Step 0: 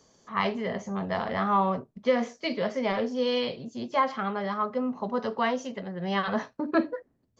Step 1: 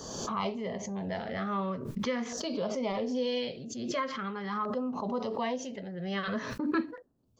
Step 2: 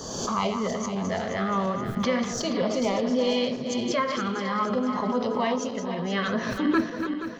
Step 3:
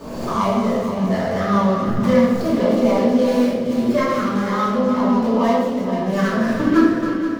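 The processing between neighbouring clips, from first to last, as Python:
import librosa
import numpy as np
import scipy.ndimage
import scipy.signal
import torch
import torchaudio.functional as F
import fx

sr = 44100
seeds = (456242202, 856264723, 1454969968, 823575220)

y1 = fx.filter_lfo_notch(x, sr, shape='saw_down', hz=0.43, low_hz=560.0, high_hz=2300.0, q=1.4)
y1 = fx.pre_swell(y1, sr, db_per_s=37.0)
y1 = y1 * 10.0 ** (-4.5 / 20.0)
y2 = fx.reverse_delay_fb(y1, sr, ms=238, feedback_pct=67, wet_db=-7.5)
y2 = y2 * 10.0 ** (6.0 / 20.0)
y3 = scipy.ndimage.median_filter(y2, 15, mode='constant')
y3 = fx.room_shoebox(y3, sr, seeds[0], volume_m3=310.0, walls='mixed', distance_m=2.6)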